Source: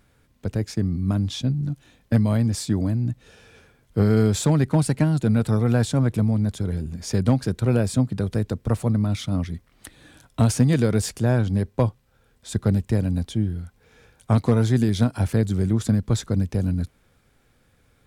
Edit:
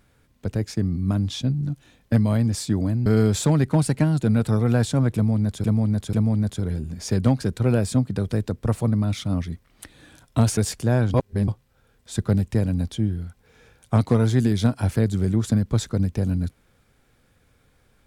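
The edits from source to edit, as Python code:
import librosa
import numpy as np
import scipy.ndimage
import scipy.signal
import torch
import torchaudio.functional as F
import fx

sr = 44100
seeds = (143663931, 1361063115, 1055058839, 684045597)

y = fx.edit(x, sr, fx.cut(start_s=3.06, length_s=1.0),
    fx.repeat(start_s=6.15, length_s=0.49, count=3),
    fx.cut(start_s=10.59, length_s=0.35),
    fx.reverse_span(start_s=11.51, length_s=0.34), tone=tone)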